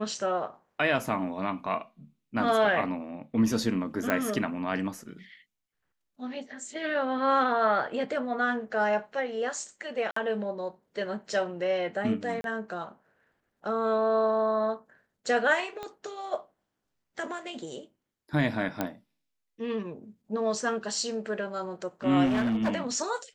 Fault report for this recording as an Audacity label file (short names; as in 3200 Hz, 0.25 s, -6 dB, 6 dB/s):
4.100000	4.100000	pop -13 dBFS
10.110000	10.160000	gap 54 ms
12.410000	12.440000	gap 32 ms
15.830000	15.830000	pop -23 dBFS
18.810000	18.810000	pop -14 dBFS
22.250000	22.740000	clipped -23 dBFS